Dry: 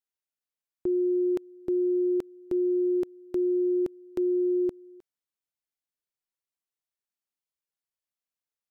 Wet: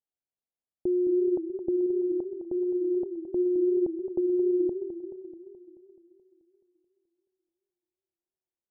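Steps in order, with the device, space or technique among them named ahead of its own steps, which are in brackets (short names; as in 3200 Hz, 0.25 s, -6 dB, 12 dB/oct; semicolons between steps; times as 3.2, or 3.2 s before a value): 1.86–3.21 low shelf 450 Hz -4.5 dB; under water (LPF 730 Hz 24 dB/oct; bell 780 Hz +5 dB 0.34 oct); warbling echo 0.215 s, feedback 62%, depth 163 cents, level -10.5 dB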